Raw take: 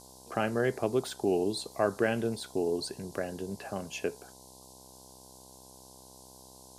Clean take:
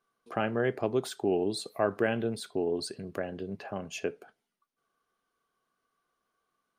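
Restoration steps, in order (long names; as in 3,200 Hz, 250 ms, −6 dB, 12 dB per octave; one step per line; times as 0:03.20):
hum removal 64.6 Hz, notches 16
noise reduction from a noise print 28 dB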